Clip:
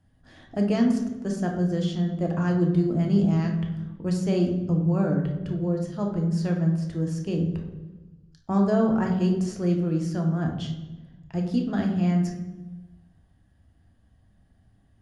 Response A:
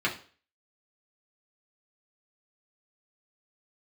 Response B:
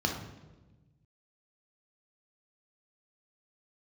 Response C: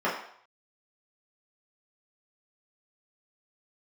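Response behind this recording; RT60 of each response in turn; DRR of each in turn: B; 0.40, 1.2, 0.65 s; -4.5, 1.5, -8.5 dB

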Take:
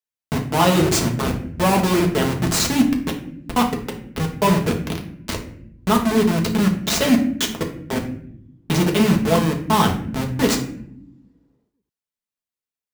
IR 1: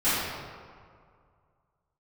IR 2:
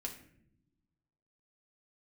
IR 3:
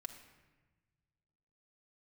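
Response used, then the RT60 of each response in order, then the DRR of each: 2; 2.1 s, not exponential, 1.2 s; -18.0, 0.5, 2.0 dB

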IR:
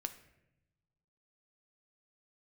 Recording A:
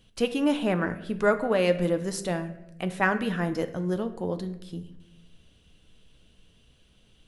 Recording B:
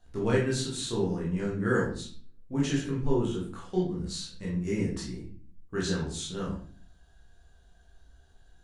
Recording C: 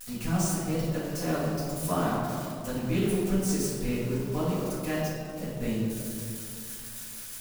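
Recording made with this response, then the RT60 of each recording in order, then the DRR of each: A; 0.90, 0.45, 2.5 s; 8.0, -5.5, -9.5 dB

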